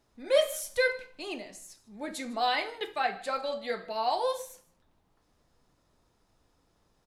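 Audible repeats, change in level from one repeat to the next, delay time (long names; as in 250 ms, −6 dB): 1, repeats not evenly spaced, 153 ms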